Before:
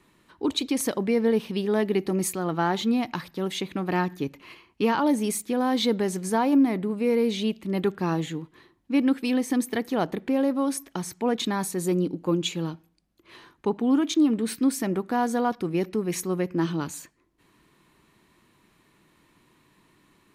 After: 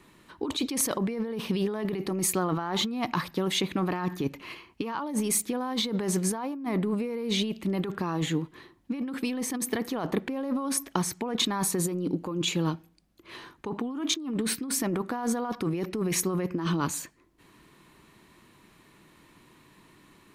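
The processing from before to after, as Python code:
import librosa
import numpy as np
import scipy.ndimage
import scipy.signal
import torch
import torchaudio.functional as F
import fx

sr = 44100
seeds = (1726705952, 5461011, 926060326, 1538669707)

y = fx.dynamic_eq(x, sr, hz=1100.0, q=2.9, threshold_db=-45.0, ratio=4.0, max_db=7)
y = fx.over_compress(y, sr, threshold_db=-29.0, ratio=-1.0)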